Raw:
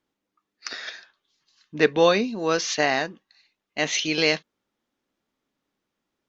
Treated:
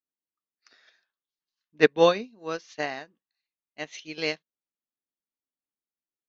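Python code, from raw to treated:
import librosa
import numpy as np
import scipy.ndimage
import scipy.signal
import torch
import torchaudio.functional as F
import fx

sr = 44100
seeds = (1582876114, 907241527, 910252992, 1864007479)

y = fx.high_shelf(x, sr, hz=4700.0, db=-3.0)
y = fx.upward_expand(y, sr, threshold_db=-31.0, expansion=2.5)
y = y * librosa.db_to_amplitude(2.0)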